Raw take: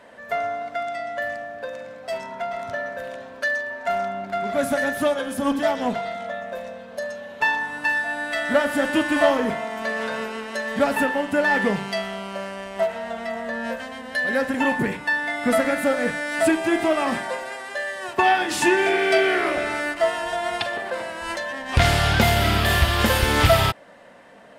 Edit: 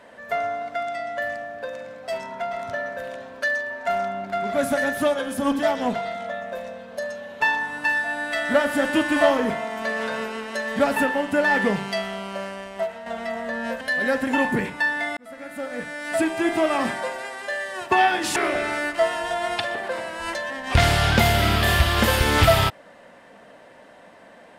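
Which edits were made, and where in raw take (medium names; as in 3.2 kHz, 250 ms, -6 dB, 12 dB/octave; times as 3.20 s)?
12.44–13.06 s: fade out, to -8 dB
13.81–14.08 s: delete
15.44–16.95 s: fade in
18.63–19.38 s: delete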